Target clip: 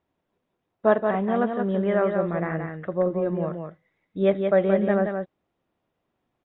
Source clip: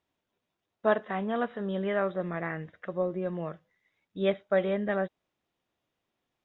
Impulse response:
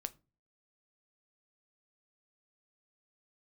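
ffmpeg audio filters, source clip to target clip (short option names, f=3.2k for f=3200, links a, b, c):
-af "lowpass=f=1.1k:p=1,aecho=1:1:176:0.531,volume=7dB"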